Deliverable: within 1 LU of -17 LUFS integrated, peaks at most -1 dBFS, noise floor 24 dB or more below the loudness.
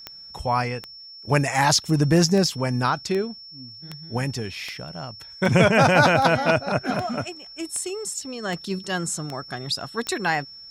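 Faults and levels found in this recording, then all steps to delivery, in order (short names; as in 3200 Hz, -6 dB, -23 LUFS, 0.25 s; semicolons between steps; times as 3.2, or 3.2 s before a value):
clicks 14; steady tone 5400 Hz; tone level -40 dBFS; loudness -22.5 LUFS; peak -4.5 dBFS; loudness target -17.0 LUFS
-> de-click; notch 5400 Hz, Q 30; gain +5.5 dB; limiter -1 dBFS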